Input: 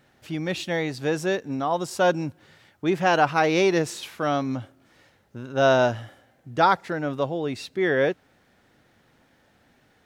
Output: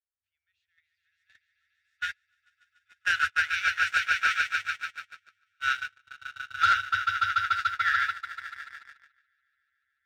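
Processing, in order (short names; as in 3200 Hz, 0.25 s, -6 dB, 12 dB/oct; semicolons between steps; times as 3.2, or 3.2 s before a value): low shelf 130 Hz +4 dB; FFT band-reject 100–1300 Hz; bell 11000 Hz -14 dB 1.9 oct; swelling echo 0.145 s, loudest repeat 5, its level -4 dB; gate -26 dBFS, range -41 dB; sample leveller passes 1; gain +1 dB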